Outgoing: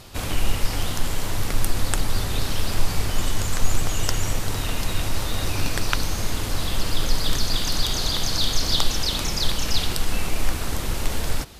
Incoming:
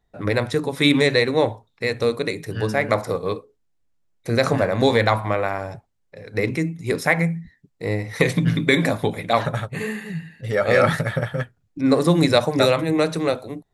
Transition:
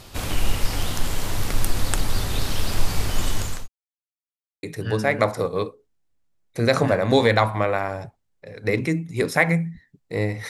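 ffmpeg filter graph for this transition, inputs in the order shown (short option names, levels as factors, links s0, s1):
-filter_complex "[0:a]apad=whole_dur=10.49,atrim=end=10.49,asplit=2[s0][s1];[s0]atrim=end=3.68,asetpts=PTS-STARTPTS,afade=t=out:st=3.25:d=0.43:c=qsin[s2];[s1]atrim=start=3.68:end=4.63,asetpts=PTS-STARTPTS,volume=0[s3];[1:a]atrim=start=2.33:end=8.19,asetpts=PTS-STARTPTS,afade=t=in:d=0.004:c=hsin[s4];[s2][s3][s4]concat=n=3:v=0:a=1"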